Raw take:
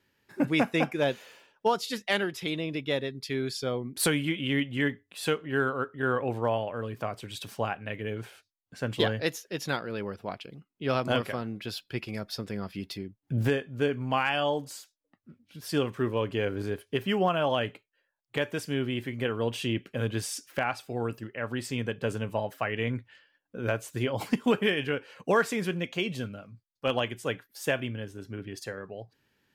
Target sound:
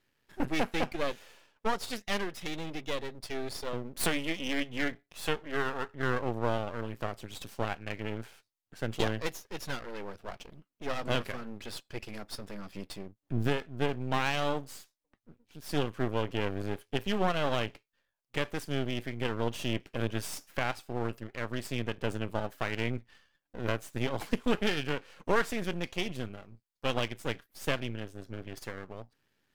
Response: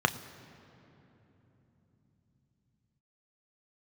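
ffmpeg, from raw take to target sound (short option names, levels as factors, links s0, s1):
-filter_complex "[0:a]asettb=1/sr,asplit=3[s0][s1][s2];[s0]atrim=end=3.734[s3];[s1]atrim=start=3.73:end=5.86,asetpts=PTS-STARTPTS,afade=t=in:d=0.004:c=qsin,afade=t=out:st=2.126:d=0.004:c=qsin,highpass=f=120:w=0.5412,highpass=f=120:w=1.3066[s4];[s2]atrim=start=5.856[s5];[s3][s4]acrossfade=d=0.004:c1=hsin:c2=qsin[s6];[s6][s5]acrossfade=d=0.004:c1=qsin:c2=hsin,aeval=exprs='max(val(0),0)':c=same"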